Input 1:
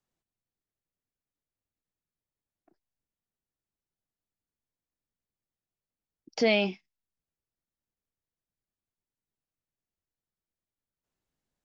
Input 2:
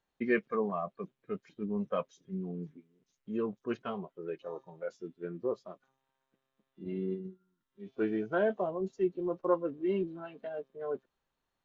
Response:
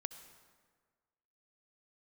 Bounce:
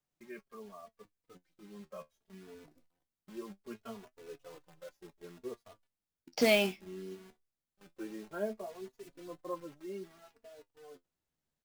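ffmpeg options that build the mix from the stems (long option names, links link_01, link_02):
-filter_complex "[0:a]acrusher=bits=3:mode=log:mix=0:aa=0.000001,volume=2dB[link_01];[1:a]acrusher=bits=8:dc=4:mix=0:aa=0.000001,dynaudnorm=framelen=420:gausssize=11:maxgain=7.5dB,asplit=2[link_02][link_03];[link_03]adelay=3.4,afreqshift=0.63[link_04];[link_02][link_04]amix=inputs=2:normalize=1,volume=-10.5dB[link_05];[link_01][link_05]amix=inputs=2:normalize=0,flanger=delay=6.7:depth=6.9:regen=51:speed=0.21:shape=sinusoidal"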